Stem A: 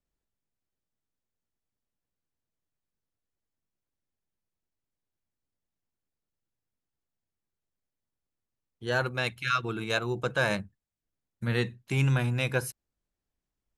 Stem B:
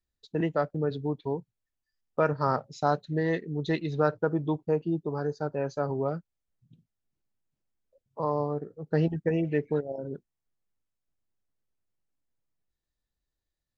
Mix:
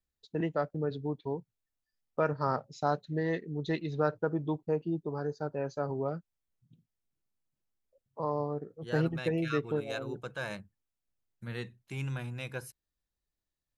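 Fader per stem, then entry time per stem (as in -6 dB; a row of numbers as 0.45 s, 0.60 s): -11.0 dB, -4.0 dB; 0.00 s, 0.00 s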